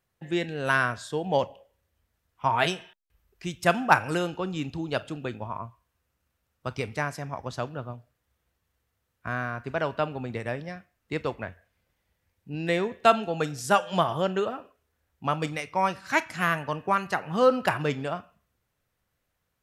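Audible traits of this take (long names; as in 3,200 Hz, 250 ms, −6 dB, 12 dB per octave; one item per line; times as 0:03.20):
background noise floor −79 dBFS
spectral slope −4.0 dB per octave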